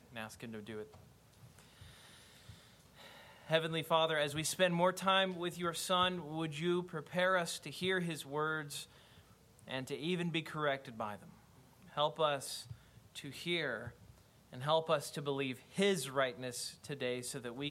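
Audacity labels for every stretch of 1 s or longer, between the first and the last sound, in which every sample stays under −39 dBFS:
0.820000	3.500000	silence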